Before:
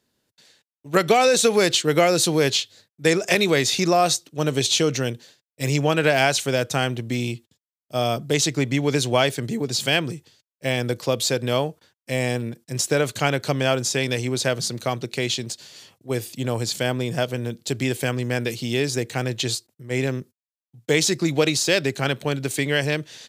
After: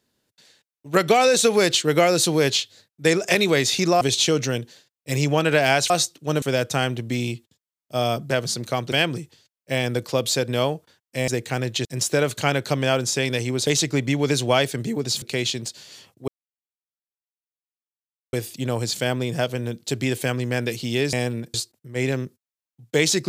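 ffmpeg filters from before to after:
-filter_complex "[0:a]asplit=13[s0][s1][s2][s3][s4][s5][s6][s7][s8][s9][s10][s11][s12];[s0]atrim=end=4.012[s13];[s1]atrim=start=4.528:end=6.422[s14];[s2]atrim=start=4.008:end=4.532[s15];[s3]atrim=start=6.418:end=8.312[s16];[s4]atrim=start=14.448:end=15.062[s17];[s5]atrim=start=9.858:end=12.222[s18];[s6]atrim=start=18.918:end=19.492[s19];[s7]atrim=start=12.628:end=14.452[s20];[s8]atrim=start=8.308:end=9.862[s21];[s9]atrim=start=15.058:end=16.12,asetpts=PTS-STARTPTS,afade=t=out:st=1.058:d=0.004:c=hsin,apad=pad_dur=2.05[s22];[s10]atrim=start=16.12:end=18.922,asetpts=PTS-STARTPTS,afade=t=in:d=0.004:c=hsin[s23];[s11]atrim=start=12.218:end=12.632[s24];[s12]atrim=start=19.488[s25];[s13][s14]acrossfade=d=0.004:c1=hsin:c2=hsin[s26];[s26][s15]acrossfade=d=0.004:c1=hsin:c2=hsin[s27];[s27][s16]acrossfade=d=0.004:c1=hsin:c2=hsin[s28];[s28][s17]acrossfade=d=0.004:c1=hsin:c2=hsin[s29];[s29][s18]acrossfade=d=0.004:c1=hsin:c2=hsin[s30];[s30][s19]acrossfade=d=0.004:c1=hsin:c2=hsin[s31];[s31][s20]acrossfade=d=0.004:c1=hsin:c2=hsin[s32];[s32][s21]acrossfade=d=0.004:c1=hsin:c2=hsin[s33];[s22][s23]concat=n=2:v=0:a=1[s34];[s33][s34]acrossfade=d=0.004:c1=hsin:c2=hsin[s35];[s35][s24]acrossfade=d=0.004:c1=hsin:c2=hsin[s36];[s36][s25]acrossfade=d=0.004:c1=hsin:c2=hsin"

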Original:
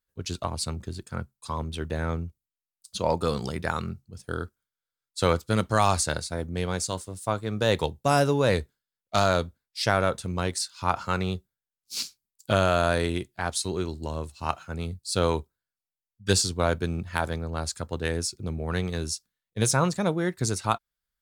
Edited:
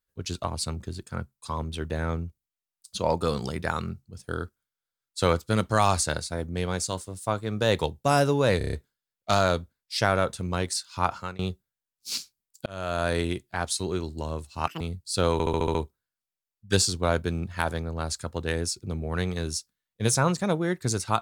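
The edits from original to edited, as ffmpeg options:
-filter_complex "[0:a]asplit=16[s0][s1][s2][s3][s4][s5][s6][s7][s8][s9][s10][s11][s12][s13][s14][s15];[s0]atrim=end=8.612[s16];[s1]atrim=start=8.578:end=8.612[s17];[s2]atrim=start=8.578:end=8.612[s18];[s3]atrim=start=8.578:end=8.612[s19];[s4]atrim=start=8.578:end=8.612[s20];[s5]atrim=start=8.578:end=11.24,asetpts=PTS-STARTPTS,afade=t=out:st=2.332:d=0.33:silence=0.0707946[s21];[s6]atrim=start=11.24:end=12.51,asetpts=PTS-STARTPTS,afade=t=in:d=0.004:c=hsin:silence=0.0707946,afade=t=out:st=1.266:d=0.004:c=hsin[s22];[s7]atrim=start=12.51:end=14.524,asetpts=PTS-STARTPTS,afade=t=in:d=0.53[s23];[s8]atrim=start=14.52:end=14.79,asetpts=PTS-STARTPTS,asetrate=87759,aresample=44100,atrim=end_sample=5983,asetpts=PTS-STARTPTS[s24];[s9]atrim=start=14.786:end=15.382[s25];[s10]atrim=start=15.308:end=15.382[s26];[s11]atrim=start=15.308:end=15.382[s27];[s12]atrim=start=15.308:end=15.382[s28];[s13]atrim=start=15.308:end=15.382[s29];[s14]atrim=start=15.308:end=15.382[s30];[s15]atrim=start=15.308[s31];[s16][s17]acrossfade=d=0.004:c1=hsin:c2=hsin[s32];[s32][s18]acrossfade=d=0.004:c1=hsin:c2=hsin[s33];[s33][s19]acrossfade=d=0.004:c1=hsin:c2=hsin[s34];[s34][s20]acrossfade=d=0.004:c1=hsin:c2=hsin[s35];[s21][s22][s23]concat=n=3:v=0:a=1[s36];[s35][s36]acrossfade=d=0.004:c1=hsin:c2=hsin[s37];[s37][s24]acrossfade=d=0.004:c1=hsin:c2=hsin[s38];[s38][s25]acrossfade=d=0.004:c1=hsin:c2=hsin[s39];[s39][s26]acrossfade=d=0.004:c1=hsin:c2=hsin[s40];[s40][s27]acrossfade=d=0.004:c1=hsin:c2=hsin[s41];[s41][s28]acrossfade=d=0.004:c1=hsin:c2=hsin[s42];[s42][s29]acrossfade=d=0.004:c1=hsin:c2=hsin[s43];[s43][s30]acrossfade=d=0.004:c1=hsin:c2=hsin[s44];[s44][s31]acrossfade=d=0.004:c1=hsin:c2=hsin"

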